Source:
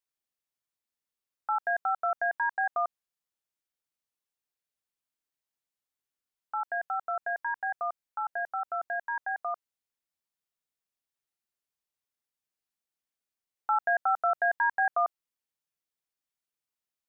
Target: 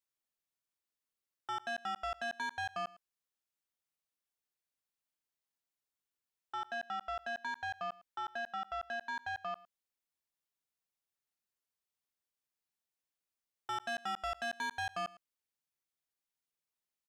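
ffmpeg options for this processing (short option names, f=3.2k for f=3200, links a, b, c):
-af "asoftclip=type=tanh:threshold=-32dB,aecho=1:1:108:0.0944,volume=-2.5dB"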